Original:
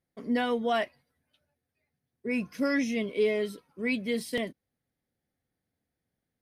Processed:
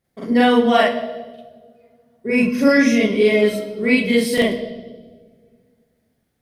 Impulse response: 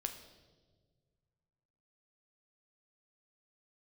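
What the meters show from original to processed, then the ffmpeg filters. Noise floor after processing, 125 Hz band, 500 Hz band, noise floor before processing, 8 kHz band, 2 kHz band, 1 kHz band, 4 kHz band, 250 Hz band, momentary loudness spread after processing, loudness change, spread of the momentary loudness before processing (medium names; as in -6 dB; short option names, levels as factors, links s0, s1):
-70 dBFS, +14.0 dB, +13.0 dB, under -85 dBFS, +13.5 dB, +13.5 dB, +13.5 dB, +13.5 dB, +14.0 dB, 16 LU, +13.5 dB, 8 LU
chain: -filter_complex "[0:a]asplit=2[s0][s1];[1:a]atrim=start_sample=2205,adelay=43[s2];[s1][s2]afir=irnorm=-1:irlink=0,volume=1.88[s3];[s0][s3]amix=inputs=2:normalize=0,volume=2.37"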